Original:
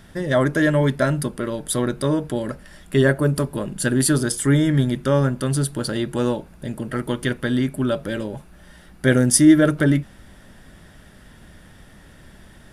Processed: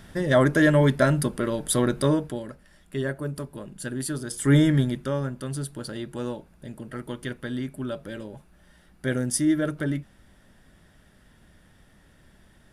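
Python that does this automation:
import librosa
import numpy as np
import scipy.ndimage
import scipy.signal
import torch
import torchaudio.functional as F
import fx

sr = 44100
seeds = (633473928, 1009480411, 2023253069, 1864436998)

y = fx.gain(x, sr, db=fx.line((2.09, -0.5), (2.52, -12.0), (4.26, -12.0), (4.57, 0.5), (5.19, -10.0)))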